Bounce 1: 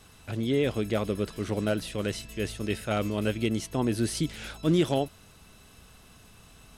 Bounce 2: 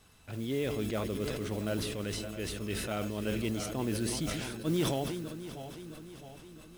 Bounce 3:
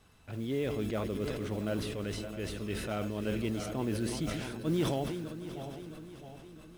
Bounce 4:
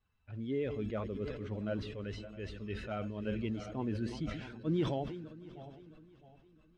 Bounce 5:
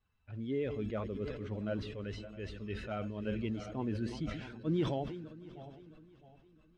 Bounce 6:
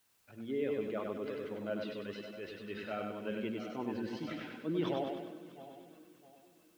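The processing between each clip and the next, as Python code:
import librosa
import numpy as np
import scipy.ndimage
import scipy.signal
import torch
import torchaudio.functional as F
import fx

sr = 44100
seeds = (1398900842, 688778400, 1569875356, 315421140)

y1 = fx.reverse_delay_fb(x, sr, ms=331, feedback_pct=71, wet_db=-11.0)
y1 = fx.mod_noise(y1, sr, seeds[0], snr_db=21)
y1 = fx.sustainer(y1, sr, db_per_s=29.0)
y1 = F.gain(torch.from_numpy(y1), -7.5).numpy()
y2 = fx.high_shelf(y1, sr, hz=3500.0, db=-7.0)
y2 = y2 + 10.0 ** (-16.5 / 20.0) * np.pad(y2, (int(764 * sr / 1000.0), 0))[:len(y2)]
y3 = fx.bin_expand(y2, sr, power=1.5)
y3 = fx.air_absorb(y3, sr, metres=160.0)
y4 = y3
y5 = fx.bandpass_edges(y4, sr, low_hz=260.0, high_hz=4600.0)
y5 = fx.dmg_noise_colour(y5, sr, seeds[1], colour='white', level_db=-74.0)
y5 = fx.echo_feedback(y5, sr, ms=98, feedback_pct=47, wet_db=-4.0)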